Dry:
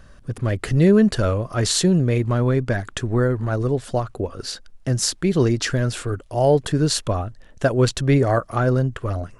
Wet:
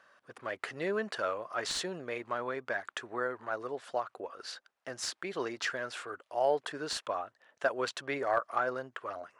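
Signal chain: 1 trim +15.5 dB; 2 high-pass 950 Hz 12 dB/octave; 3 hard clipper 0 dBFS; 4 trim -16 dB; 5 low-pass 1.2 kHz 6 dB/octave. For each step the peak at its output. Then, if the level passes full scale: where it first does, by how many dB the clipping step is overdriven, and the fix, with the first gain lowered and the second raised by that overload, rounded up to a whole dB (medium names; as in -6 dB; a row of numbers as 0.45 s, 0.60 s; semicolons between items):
+10.0 dBFS, +7.5 dBFS, 0.0 dBFS, -16.0 dBFS, -17.5 dBFS; step 1, 7.5 dB; step 1 +7.5 dB, step 4 -8 dB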